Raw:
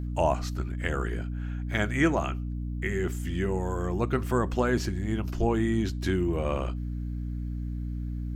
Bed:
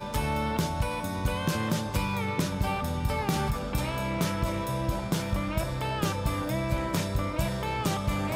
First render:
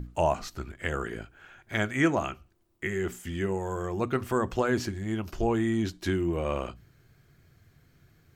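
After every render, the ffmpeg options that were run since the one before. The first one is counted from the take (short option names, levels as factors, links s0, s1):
-af "bandreject=f=60:t=h:w=6,bandreject=f=120:t=h:w=6,bandreject=f=180:t=h:w=6,bandreject=f=240:t=h:w=6,bandreject=f=300:t=h:w=6"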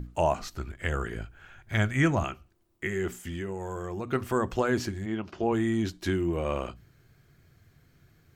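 -filter_complex "[0:a]asettb=1/sr,asplit=3[s0][s1][s2];[s0]atrim=end=0.394[s3];[s1]atrim=start=0.39:end=2.24,asetpts=PTS-STARTPTS,afade=t=in:d=0.004:c=qsin,afade=t=out:st=1.846:d=0.004:c=qsin,asubboost=boost=7:cutoff=160[s4];[s2]atrim=start=2.236[s5];[s3][s4]acrossfade=d=0.004:c1=hsin:c2=qsin[s6];[s6][s5]acrossfade=d=0.004:c1=qsin:c2=hsin,asettb=1/sr,asplit=3[s7][s8][s9];[s7]atrim=end=3.194[s10];[s8]atrim=start=3.19:end=4.11,asetpts=PTS-STARTPTS,afade=t=in:d=0.004:c=qsin,afade=t=out:st=0.916:d=0.004:c=qsin,acompressor=threshold=0.0282:ratio=4:attack=3.2:release=140:knee=1:detection=peak[s11];[s9]atrim=start=4.106[s12];[s10][s11]acrossfade=d=0.004:c1=hsin:c2=qsin[s13];[s13][s12]acrossfade=d=0.004:c1=qsin:c2=hsin,asplit=3[s14][s15][s16];[s14]afade=t=out:st=5.05:d=0.02[s17];[s15]highpass=140,lowpass=3900,afade=t=in:st=5.05:d=0.02,afade=t=out:st=5.51:d=0.02[s18];[s16]afade=t=in:st=5.51:d=0.02[s19];[s17][s18][s19]amix=inputs=3:normalize=0"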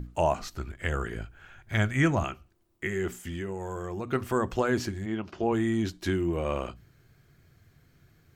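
-af anull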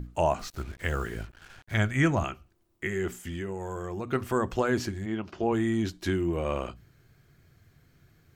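-filter_complex "[0:a]asettb=1/sr,asplit=3[s0][s1][s2];[s0]atrim=end=0.394[s3];[s1]atrim=start=0.39:end=1.74,asetpts=PTS-STARTPTS,afade=t=in:d=0.004:c=qsin,afade=t=out:st=1.346:d=0.004:c=qsin,acrusher=bits=7:mix=0:aa=0.5[s4];[s2]atrim=start=1.736[s5];[s3][s4]acrossfade=d=0.004:c1=hsin:c2=qsin[s6];[s6][s5]acrossfade=d=0.004:c1=qsin:c2=hsin"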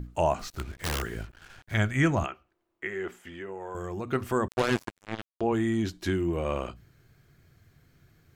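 -filter_complex "[0:a]asplit=3[s0][s1][s2];[s0]afade=t=out:st=0.52:d=0.02[s3];[s1]aeval=exprs='(mod(15*val(0)+1,2)-1)/15':c=same,afade=t=in:st=0.52:d=0.02,afade=t=out:st=1.01:d=0.02[s4];[s2]afade=t=in:st=1.01:d=0.02[s5];[s3][s4][s5]amix=inputs=3:normalize=0,asettb=1/sr,asplit=3[s6][s7][s8];[s6]atrim=end=2.264[s9];[s7]atrim=start=2.26:end=3.75,asetpts=PTS-STARTPTS,afade=t=in:d=0.004:c=qsin,afade=t=out:st=1.486:d=0.004:c=qsin,bass=f=250:g=-15,treble=f=4000:g=-14[s10];[s8]atrim=start=3.746[s11];[s9][s10]acrossfade=d=0.004:c1=hsin:c2=qsin[s12];[s12][s11]acrossfade=d=0.004:c1=qsin:c2=hsin,asettb=1/sr,asplit=3[s13][s14][s15];[s13]atrim=end=4.484[s16];[s14]atrim=start=4.48:end=5.41,asetpts=PTS-STARTPTS,afade=t=in:d=0.004:c=qsin,afade=t=out:st=0.926:d=0.004:c=qsin,acrusher=bits=3:mix=0:aa=0.5[s17];[s15]atrim=start=5.406[s18];[s16][s17]acrossfade=d=0.004:c1=hsin:c2=qsin[s19];[s19][s18]acrossfade=d=0.004:c1=qsin:c2=hsin"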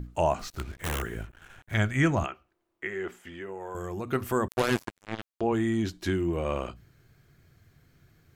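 -filter_complex "[0:a]asettb=1/sr,asplit=3[s0][s1][s2];[s0]atrim=end=0.784[s3];[s1]atrim=start=0.78:end=1.73,asetpts=PTS-STARTPTS,afade=t=in:d=0.004:c=qsin,afade=t=out:st=0.946:d=0.004:c=qsin,equalizer=f=4700:t=o:w=0.48:g=-12.5[s4];[s2]atrim=start=1.726[s5];[s3][s4]acrossfade=d=0.004:c1=hsin:c2=qsin[s6];[s6][s5]acrossfade=d=0.004:c1=qsin:c2=hsin,asettb=1/sr,asplit=3[s7][s8][s9];[s7]atrim=end=3.424[s10];[s8]atrim=start=3.42:end=4.81,asetpts=PTS-STARTPTS,afade=t=in:d=0.004:c=qsin,afade=t=out:st=1.386:d=0.004:c=qsin,equalizer=f=13000:w=1:g=9.5[s11];[s9]atrim=start=4.806[s12];[s10][s11]acrossfade=d=0.004:c1=hsin:c2=qsin[s13];[s13][s12]acrossfade=d=0.004:c1=qsin:c2=hsin"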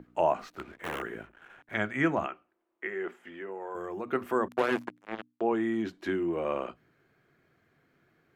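-filter_complex "[0:a]acrossover=split=200 2800:gain=0.0794 1 0.178[s0][s1][s2];[s0][s1][s2]amix=inputs=3:normalize=0,bandreject=f=60:t=h:w=6,bandreject=f=120:t=h:w=6,bandreject=f=180:t=h:w=6,bandreject=f=240:t=h:w=6,bandreject=f=300:t=h:w=6"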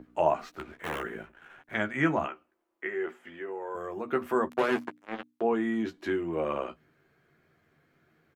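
-filter_complex "[0:a]asplit=2[s0][s1];[s1]adelay=13,volume=0.473[s2];[s0][s2]amix=inputs=2:normalize=0"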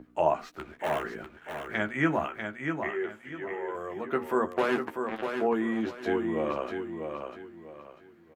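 -af "aecho=1:1:645|1290|1935|2580:0.501|0.15|0.0451|0.0135"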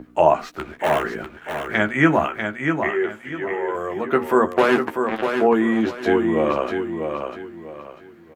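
-af "volume=3.16,alimiter=limit=0.891:level=0:latency=1"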